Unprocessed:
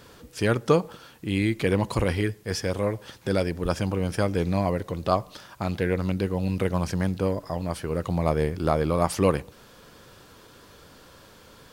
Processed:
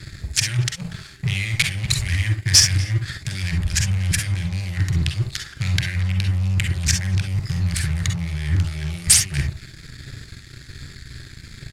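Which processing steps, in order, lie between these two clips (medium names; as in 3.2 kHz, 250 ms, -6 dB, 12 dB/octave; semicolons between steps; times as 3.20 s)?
local Wiener filter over 15 samples; compressor with a negative ratio -33 dBFS, ratio -1; elliptic band-stop 140–2000 Hz, stop band 40 dB; speakerphone echo 240 ms, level -19 dB; waveshaping leveller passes 3; low-pass 9.3 kHz 12 dB/octave; treble shelf 3.9 kHz +11.5 dB; on a send at -4.5 dB: reverberation, pre-delay 38 ms; on the sum: dynamic bell 1.4 kHz, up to +5 dB, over -47 dBFS, Q 1.5; trim +3.5 dB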